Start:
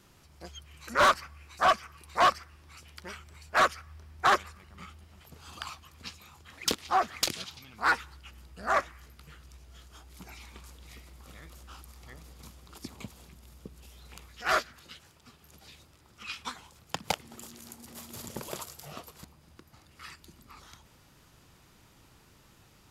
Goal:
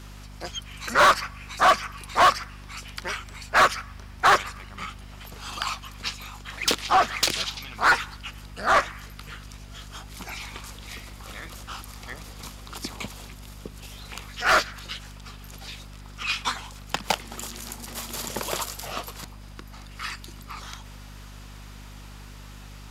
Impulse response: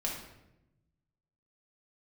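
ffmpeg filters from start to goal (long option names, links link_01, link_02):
-filter_complex "[0:a]asplit=2[link_01][link_02];[link_02]highpass=frequency=720:poles=1,volume=14dB,asoftclip=type=tanh:threshold=-17.5dB[link_03];[link_01][link_03]amix=inputs=2:normalize=0,lowpass=frequency=7000:poles=1,volume=-6dB,aeval=exprs='val(0)+0.00447*(sin(2*PI*50*n/s)+sin(2*PI*2*50*n/s)/2+sin(2*PI*3*50*n/s)/3+sin(2*PI*4*50*n/s)/4+sin(2*PI*5*50*n/s)/5)':channel_layout=same,volume=5dB"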